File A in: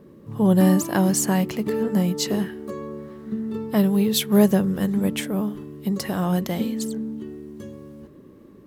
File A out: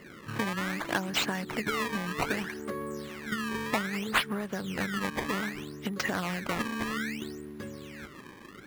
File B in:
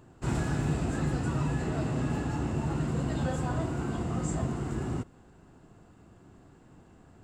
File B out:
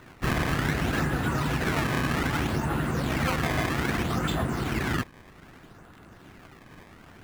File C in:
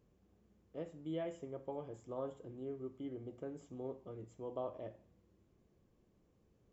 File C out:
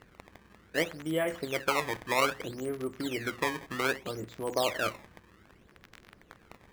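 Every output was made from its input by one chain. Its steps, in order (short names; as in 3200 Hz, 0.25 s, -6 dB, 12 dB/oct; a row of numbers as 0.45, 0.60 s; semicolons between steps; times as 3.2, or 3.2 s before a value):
compressor 16:1, threshold -26 dBFS; crackle 99/s -50 dBFS; decimation with a swept rate 18×, swing 160% 0.63 Hz; bell 1700 Hz +10 dB 1.6 oct; harmonic-percussive split harmonic -6 dB; normalise peaks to -12 dBFS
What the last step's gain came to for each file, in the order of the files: 0.0, +6.5, +13.5 dB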